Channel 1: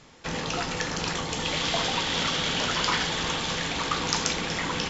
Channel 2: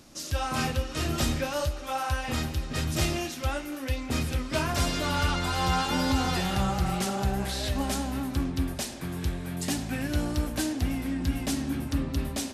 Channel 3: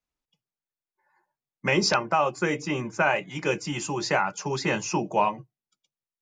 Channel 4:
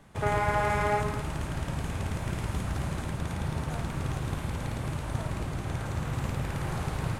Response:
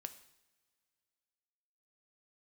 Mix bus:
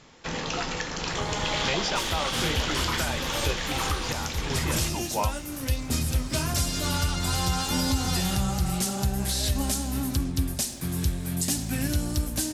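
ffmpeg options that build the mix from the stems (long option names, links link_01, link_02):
-filter_complex "[0:a]asubboost=boost=6.5:cutoff=55,volume=-0.5dB[link_01];[1:a]bass=frequency=250:gain=7,treble=frequency=4000:gain=13,dynaudnorm=framelen=1000:gausssize=5:maxgain=11.5dB,aeval=exprs='sgn(val(0))*max(abs(val(0))-0.00708,0)':channel_layout=same,adelay=1800,volume=-6dB[link_02];[2:a]volume=-5dB,asplit=2[link_03][link_04];[3:a]adelay=950,volume=-7dB[link_05];[link_04]apad=whole_len=359243[link_06];[link_05][link_06]sidechaincompress=threshold=-32dB:ratio=8:attack=16:release=390[link_07];[link_01][link_02][link_03][link_07]amix=inputs=4:normalize=0,alimiter=limit=-15dB:level=0:latency=1:release=408"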